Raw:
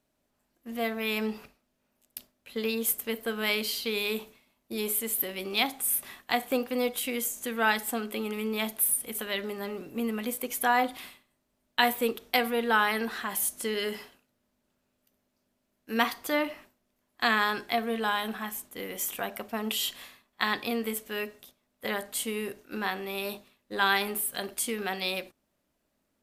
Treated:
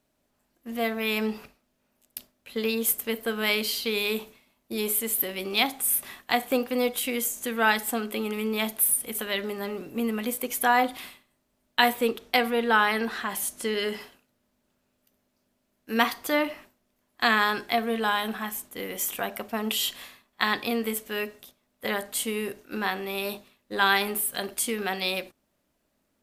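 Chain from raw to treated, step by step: 11.90–14.01 s: treble shelf 11 kHz -9.5 dB; trim +3 dB

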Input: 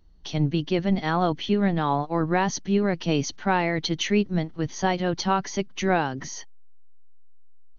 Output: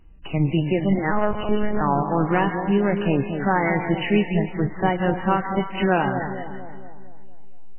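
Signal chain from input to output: in parallel at +1 dB: compression 16:1, threshold -32 dBFS, peak gain reduction 17.5 dB; on the sum: vibrato 0.81 Hz 5.5 cents; added noise violet -53 dBFS; on a send: two-band feedback delay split 890 Hz, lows 231 ms, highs 161 ms, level -7.5 dB; 1.11–1.81 s: on the sum: monotone LPC vocoder at 8 kHz 210 Hz; trim +1 dB; MP3 8 kbps 8 kHz

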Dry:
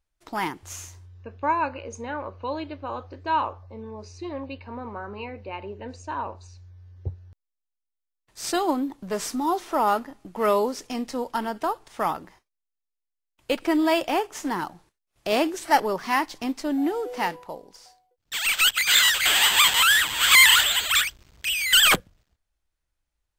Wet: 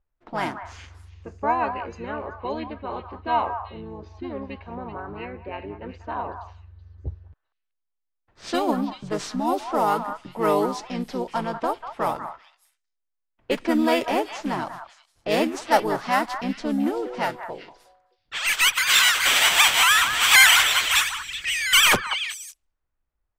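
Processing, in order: level-controlled noise filter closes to 1.8 kHz, open at -20.5 dBFS; repeats whose band climbs or falls 190 ms, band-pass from 1.3 kHz, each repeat 1.4 oct, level -7 dB; harmony voices -5 st -3 dB; trim -1 dB

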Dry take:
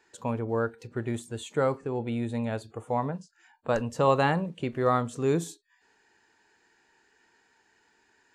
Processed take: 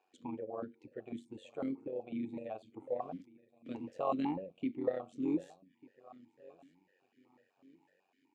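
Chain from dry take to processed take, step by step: peaking EQ 1.5 kHz -8 dB 1.9 oct; in parallel at -1 dB: compression, threshold -42 dBFS, peak gain reduction 20.5 dB; on the sum: AM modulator 93 Hz, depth 60%; 3.00–4.08 s: small samples zeroed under -49 dBFS; on a send: feedback delay 1196 ms, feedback 33%, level -20.5 dB; on the sum: stepped vowel filter 8 Hz; trim +4 dB

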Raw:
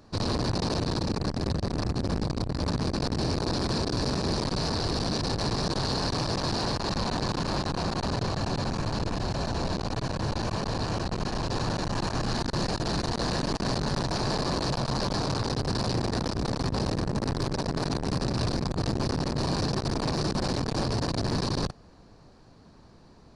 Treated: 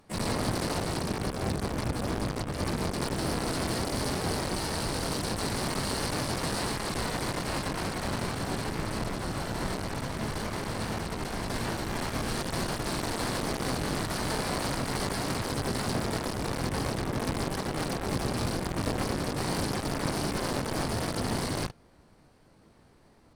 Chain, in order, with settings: Chebyshev shaper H 3 -16 dB, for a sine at -17.5 dBFS; harmony voices -7 st -11 dB, +5 st -10 dB, +12 st -2 dB; trim -2.5 dB

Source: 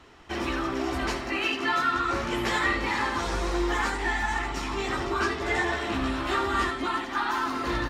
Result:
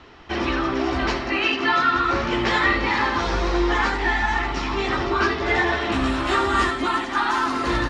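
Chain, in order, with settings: low-pass 5.5 kHz 24 dB/octave, from 5.92 s 10 kHz; trim +6 dB

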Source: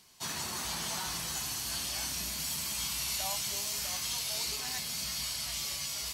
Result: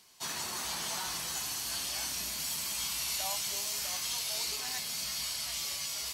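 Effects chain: tone controls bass -7 dB, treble 0 dB

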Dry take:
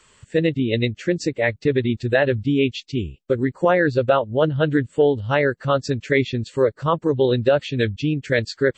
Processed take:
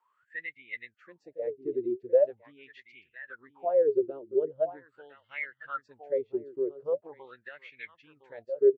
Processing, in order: delay 1011 ms -12 dB; wah-wah 0.42 Hz 340–2200 Hz, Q 19; dynamic bell 410 Hz, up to +7 dB, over -46 dBFS, Q 5.8

